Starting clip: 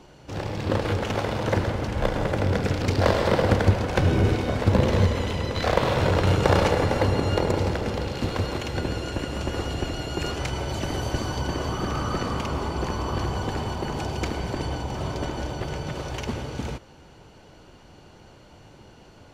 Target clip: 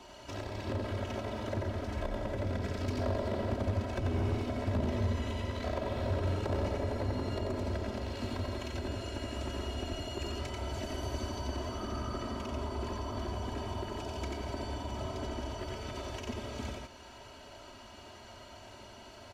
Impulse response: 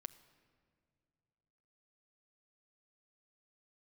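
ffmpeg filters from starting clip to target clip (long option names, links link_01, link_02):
-filter_complex "[0:a]asplit=2[link_01][link_02];[link_02]acompressor=threshold=-37dB:ratio=5,volume=1dB[link_03];[link_01][link_03]amix=inputs=2:normalize=0,lowshelf=frequency=88:gain=-12,aecho=1:1:89:0.668,acrossover=split=490[link_04][link_05];[link_05]acompressor=threshold=-37dB:ratio=5[link_06];[link_04][link_06]amix=inputs=2:normalize=0,aecho=1:1:3.1:0.91,asoftclip=type=hard:threshold=-15.5dB,equalizer=frequency=320:width=3.1:gain=-11.5,volume=-8dB"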